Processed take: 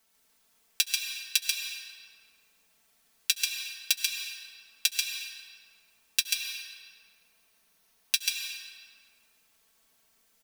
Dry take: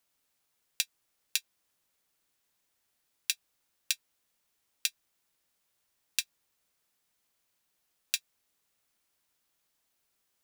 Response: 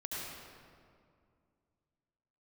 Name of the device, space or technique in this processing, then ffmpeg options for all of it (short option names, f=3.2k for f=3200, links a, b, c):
ducked reverb: -filter_complex "[0:a]aecho=1:1:4.5:0.88,asplit=3[a][b][c];[1:a]atrim=start_sample=2205[d];[b][d]afir=irnorm=-1:irlink=0[e];[c]apad=whole_len=460266[f];[e][f]sidechaincompress=threshold=-39dB:ratio=8:attack=16:release=142,volume=-1dB[g];[a][g]amix=inputs=2:normalize=0,asettb=1/sr,asplit=3[h][i][j];[h]atrim=end=6.204[k];[i]atrim=start=6.2:end=8.15,asetpts=PTS-STARTPTS,afade=t=in:d=0.004:c=qsin,afade=t=out:st=1.946:d=0.004:c=qsin,bandreject=f=7.4k:w=8.5[l];[j]atrim=start=8.146[m];[k][l]acrossfade=d=0.004:c1=hsin:c2=qsin[n];[n][m]acrossfade=d=0.004:c1=qsin:c2=hsin,aecho=1:1:138:0.668,volume=1.5dB"